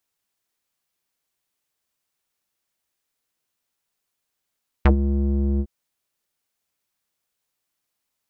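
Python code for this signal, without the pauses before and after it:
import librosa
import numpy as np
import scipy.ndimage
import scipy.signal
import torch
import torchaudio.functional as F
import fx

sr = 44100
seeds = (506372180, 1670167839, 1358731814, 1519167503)

y = fx.sub_voice(sr, note=37, wave='square', cutoff_hz=290.0, q=2.2, env_oct=3.5, env_s=0.06, attack_ms=5.8, decay_s=0.1, sustain_db=-10, release_s=0.06, note_s=0.75, slope=12)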